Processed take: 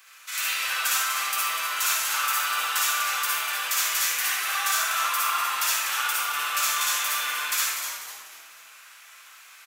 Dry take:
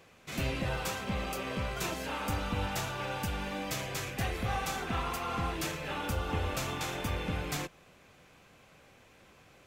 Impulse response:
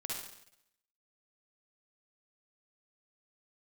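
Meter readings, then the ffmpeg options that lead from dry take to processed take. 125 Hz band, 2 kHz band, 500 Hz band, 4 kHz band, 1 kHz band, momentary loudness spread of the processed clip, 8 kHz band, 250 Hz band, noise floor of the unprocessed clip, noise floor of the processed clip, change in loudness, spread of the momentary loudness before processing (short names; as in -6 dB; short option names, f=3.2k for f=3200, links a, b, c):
under -30 dB, +12.0 dB, -9.0 dB, +13.0 dB, +9.0 dB, 4 LU, +17.5 dB, under -20 dB, -60 dBFS, -49 dBFS, +11.0 dB, 3 LU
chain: -filter_complex "[0:a]crystalizer=i=7:c=0,highpass=f=1.3k:t=q:w=2.7,asplit=2[a][b];[b]asoftclip=type=tanh:threshold=-21.5dB,volume=-8dB[c];[a][c]amix=inputs=2:normalize=0,asplit=5[d][e][f][g][h];[e]adelay=247,afreqshift=-140,volume=-7.5dB[i];[f]adelay=494,afreqshift=-280,volume=-15.9dB[j];[g]adelay=741,afreqshift=-420,volume=-24.3dB[k];[h]adelay=988,afreqshift=-560,volume=-32.7dB[l];[d][i][j][k][l]amix=inputs=5:normalize=0[m];[1:a]atrim=start_sample=2205[n];[m][n]afir=irnorm=-1:irlink=0,volume=-3.5dB"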